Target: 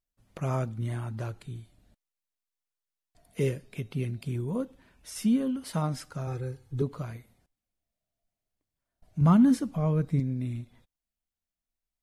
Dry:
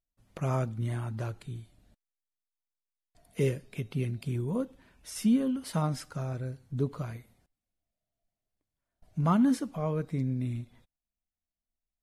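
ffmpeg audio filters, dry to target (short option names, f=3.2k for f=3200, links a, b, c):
-filter_complex "[0:a]asettb=1/sr,asplit=3[a][b][c];[a]atrim=end=6.274[d];[b]atrim=start=6.27:end=6.82,asetpts=PTS-STARTPTS,afade=t=in:d=0.004:c=qsin,afade=t=out:st=0.546:d=0.004:c=qsin,aecho=1:1:2.4:0.96,atrim=end_sample=24255[e];[c]atrim=start=6.816[f];[d][e]acrossfade=d=0.004:c1=hsin:c2=qsin[g];[g][f]acrossfade=d=0.004:c1=qsin:c2=hsin,asettb=1/sr,asplit=3[h][i][j];[h]atrim=end=9.214[k];[i]atrim=start=9.21:end=10.2,asetpts=PTS-STARTPTS,afade=t=in:d=0.004:c=qsin,afade=t=out:st=0.986:d=0.004:c=qsin,bass=f=250:g=8,treble=f=4k:g=1[l];[j]atrim=start=10.196[m];[k][l]acrossfade=d=0.004:c1=hsin:c2=qsin[n];[n][m]acrossfade=d=0.004:c1=qsin:c2=hsin"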